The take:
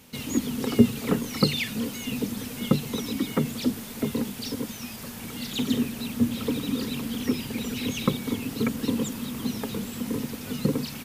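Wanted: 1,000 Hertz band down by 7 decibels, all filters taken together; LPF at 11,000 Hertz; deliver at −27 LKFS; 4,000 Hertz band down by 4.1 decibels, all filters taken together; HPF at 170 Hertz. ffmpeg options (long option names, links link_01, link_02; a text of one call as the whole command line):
ffmpeg -i in.wav -af "highpass=170,lowpass=11000,equalizer=frequency=1000:width_type=o:gain=-9,equalizer=frequency=4000:width_type=o:gain=-4.5,volume=3.5dB" out.wav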